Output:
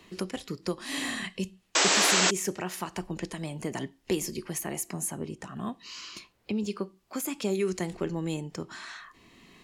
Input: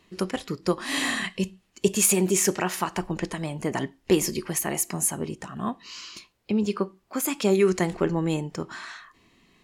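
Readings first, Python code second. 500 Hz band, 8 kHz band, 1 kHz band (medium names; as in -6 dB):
-7.0 dB, -3.5 dB, -2.5 dB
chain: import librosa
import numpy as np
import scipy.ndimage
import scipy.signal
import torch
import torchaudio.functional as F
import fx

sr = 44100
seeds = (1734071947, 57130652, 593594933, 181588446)

y = fx.dynamic_eq(x, sr, hz=1200.0, q=0.72, threshold_db=-40.0, ratio=4.0, max_db=-4)
y = fx.spec_paint(y, sr, seeds[0], shape='noise', start_s=1.75, length_s=0.56, low_hz=270.0, high_hz=8100.0, level_db=-13.0)
y = fx.band_squash(y, sr, depth_pct=40)
y = y * librosa.db_to_amplitude(-6.0)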